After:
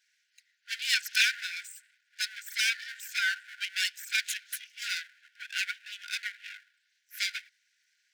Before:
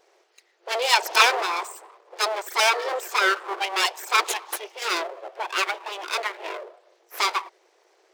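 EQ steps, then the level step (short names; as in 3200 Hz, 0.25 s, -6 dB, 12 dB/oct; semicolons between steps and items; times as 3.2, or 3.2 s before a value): brick-wall FIR high-pass 1400 Hz; -5.5 dB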